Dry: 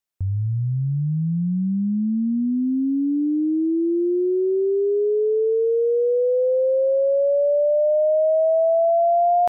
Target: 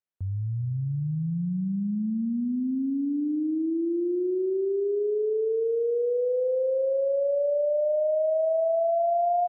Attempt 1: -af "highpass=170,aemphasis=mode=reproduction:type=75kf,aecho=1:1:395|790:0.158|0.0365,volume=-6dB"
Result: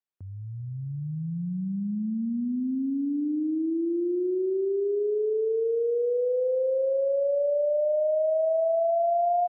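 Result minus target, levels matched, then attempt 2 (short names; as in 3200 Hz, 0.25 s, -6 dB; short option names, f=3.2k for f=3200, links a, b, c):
125 Hz band -4.5 dB
-af "highpass=64,aemphasis=mode=reproduction:type=75kf,aecho=1:1:395|790:0.158|0.0365,volume=-6dB"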